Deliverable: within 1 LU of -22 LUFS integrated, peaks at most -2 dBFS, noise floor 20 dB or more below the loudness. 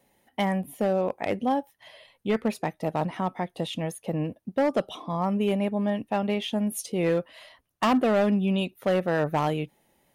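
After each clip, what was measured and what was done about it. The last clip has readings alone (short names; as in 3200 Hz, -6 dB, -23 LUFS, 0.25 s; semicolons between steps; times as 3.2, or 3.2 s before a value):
clipped 1.4%; flat tops at -17.5 dBFS; loudness -27.0 LUFS; peak -17.5 dBFS; loudness target -22.0 LUFS
-> clip repair -17.5 dBFS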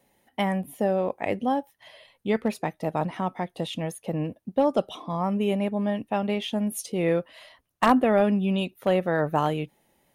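clipped 0.0%; loudness -26.5 LUFS; peak -8.5 dBFS; loudness target -22.0 LUFS
-> gain +4.5 dB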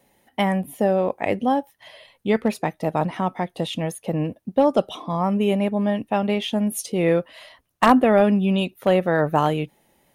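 loudness -22.0 LUFS; peak -4.0 dBFS; noise floor -66 dBFS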